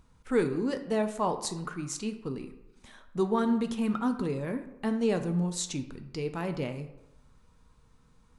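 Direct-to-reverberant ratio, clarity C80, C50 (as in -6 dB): 7.0 dB, 13.0 dB, 11.0 dB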